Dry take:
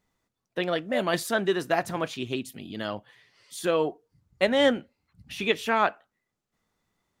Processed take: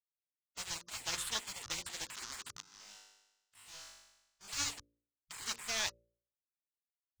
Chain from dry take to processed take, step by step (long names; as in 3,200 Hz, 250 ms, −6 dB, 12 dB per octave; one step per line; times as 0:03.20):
hold until the input has moved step −32.5 dBFS
drawn EQ curve 110 Hz 0 dB, 190 Hz −22 dB, 600 Hz −22 dB, 1,200 Hz +1 dB, 2,300 Hz −6 dB, 6,100 Hz +13 dB, 9,600 Hz −6 dB, 14,000 Hz −13 dB
gate on every frequency bin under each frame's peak −15 dB weak
0:02.61–0:04.48: tuned comb filter 50 Hz, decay 0.99 s, harmonics all, mix 100%
hum removal 57.55 Hz, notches 10
level +1 dB